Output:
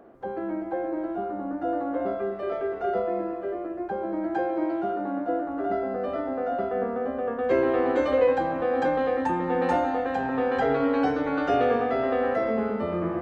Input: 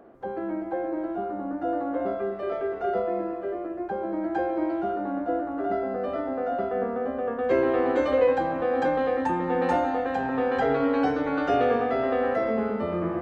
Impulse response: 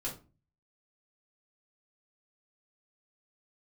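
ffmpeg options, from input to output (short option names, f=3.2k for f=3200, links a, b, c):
-filter_complex "[0:a]asettb=1/sr,asplit=3[a][b][c];[a]atrim=end=4.344[d];[b]atrim=start=4.34:end=5.48,asetpts=PTS-STARTPTS,afade=t=in:d=0.004:c=qsin,afade=t=out:st=1.136:d=0.004:c=qsin,highpass=f=89:w=0.5412,highpass=f=89:w=1.3066[e];[c]atrim=start=5.476[f];[d][e]acrossfade=d=0.004:c1=hsin:c2=qsin[g];[g][f]acrossfade=d=0.004:c1=qsin:c2=hsin"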